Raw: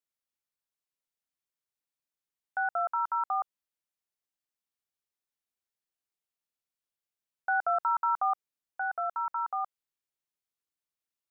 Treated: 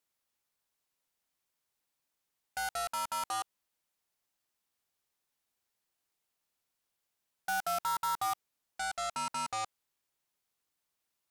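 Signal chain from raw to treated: in parallel at -10.5 dB: sine folder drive 20 dB, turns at -20 dBFS; on the sum: peaking EQ 860 Hz +2.5 dB 0.77 oct; trim -7.5 dB

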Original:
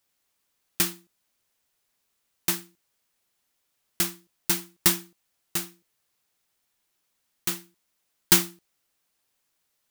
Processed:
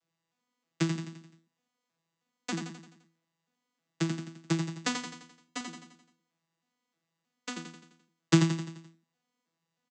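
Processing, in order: vocoder on a broken chord bare fifth, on E3, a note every 315 ms; 4.96–5.61 s: comb 7.1 ms, depth 68%; on a send: feedback delay 86 ms, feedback 51%, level -6 dB

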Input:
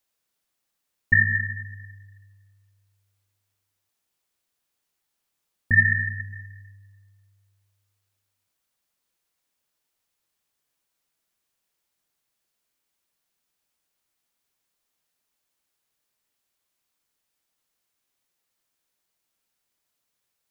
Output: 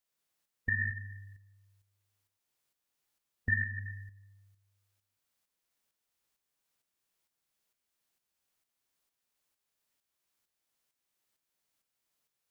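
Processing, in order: compression 2.5:1, threshold -28 dBFS, peak gain reduction 11 dB; time stretch by phase-locked vocoder 0.61×; tremolo saw up 2.2 Hz, depth 55%

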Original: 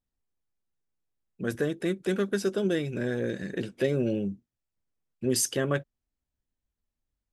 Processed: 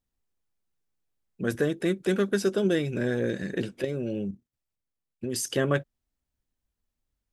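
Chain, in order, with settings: 3.81–5.50 s: level held to a coarse grid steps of 11 dB; trim +2.5 dB

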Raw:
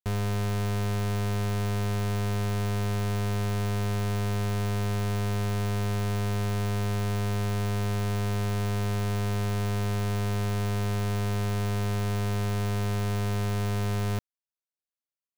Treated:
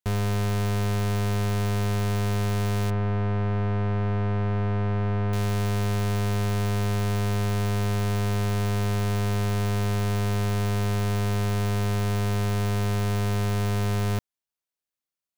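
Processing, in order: 2.90–5.33 s: low-pass 1.9 kHz 12 dB/octave; trim +3 dB

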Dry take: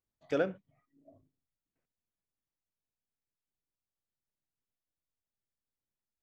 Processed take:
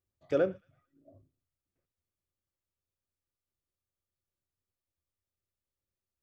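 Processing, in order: peaking EQ 80 Hz +15 dB 1.2 oct; small resonant body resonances 370/540/1200 Hz, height 9 dB; on a send: feedback echo behind a high-pass 112 ms, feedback 42%, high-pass 1.7 kHz, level -23 dB; on the sum: trim -3 dB

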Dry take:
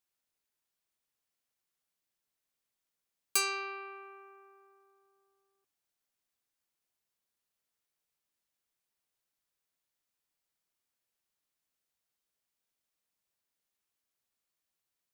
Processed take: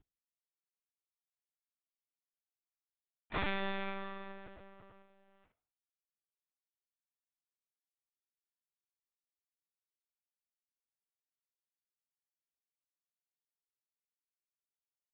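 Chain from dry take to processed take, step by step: CVSD coder 16 kbps; bass shelf 310 Hz +10 dB; harmony voices +5 st -17 dB; saturation -36.5 dBFS, distortion -9 dB; flange 1.2 Hz, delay 7.8 ms, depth 6.2 ms, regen -88%; harmony voices -3 st -2 dB, +7 st -1 dB; LPC vocoder at 8 kHz pitch kept; trim +6 dB

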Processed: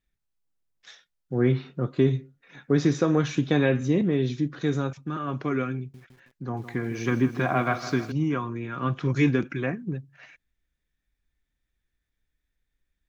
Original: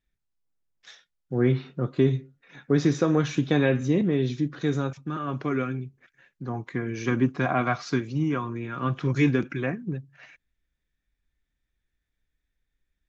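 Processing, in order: 5.78–8.12 s: bit-crushed delay 159 ms, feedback 55%, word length 8-bit, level -12 dB

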